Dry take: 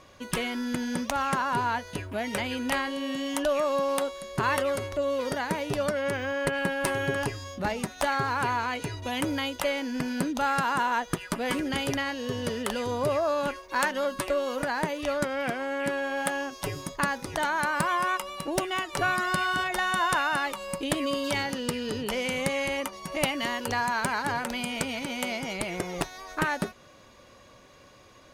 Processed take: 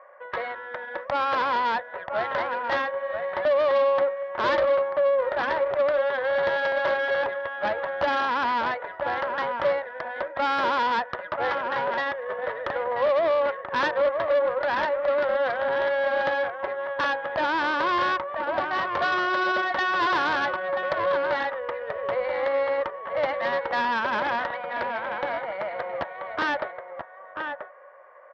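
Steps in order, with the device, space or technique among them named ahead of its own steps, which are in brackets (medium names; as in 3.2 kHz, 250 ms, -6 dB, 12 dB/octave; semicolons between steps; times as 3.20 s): elliptic band-pass 560–1900 Hz, stop band 40 dB; delay 984 ms -8 dB; guitar amplifier (valve stage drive 28 dB, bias 0.55; tone controls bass +1 dB, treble +11 dB; cabinet simulation 82–4100 Hz, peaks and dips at 350 Hz +7 dB, 510 Hz +5 dB, 2.6 kHz -5 dB); trim +8 dB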